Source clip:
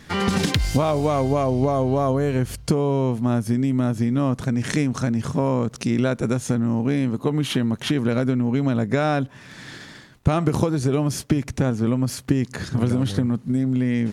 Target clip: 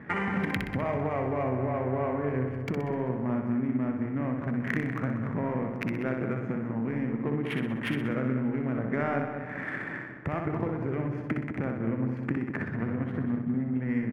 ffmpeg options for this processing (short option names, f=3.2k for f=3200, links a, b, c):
-filter_complex "[0:a]acompressor=threshold=-36dB:ratio=3,highpass=120,equalizer=f=3.7k:t=o:w=1:g=7.5,asplit=2[a][b];[b]adelay=195,lowpass=f=4.1k:p=1,volume=-7dB,asplit=2[c][d];[d]adelay=195,lowpass=f=4.1k:p=1,volume=0.5,asplit=2[e][f];[f]adelay=195,lowpass=f=4.1k:p=1,volume=0.5,asplit=2[g][h];[h]adelay=195,lowpass=f=4.1k:p=1,volume=0.5,asplit=2[i][j];[j]adelay=195,lowpass=f=4.1k:p=1,volume=0.5,asplit=2[k][l];[l]adelay=195,lowpass=f=4.1k:p=1,volume=0.5[m];[c][e][g][i][k][m]amix=inputs=6:normalize=0[n];[a][n]amix=inputs=2:normalize=0,adynamicsmooth=sensitivity=4:basefreq=830,highshelf=f=2.8k:t=q:w=3:g=-11,asplit=2[o][p];[p]aecho=0:1:62|124|186|248|310:0.562|0.247|0.109|0.0479|0.0211[q];[o][q]amix=inputs=2:normalize=0,volume=3dB"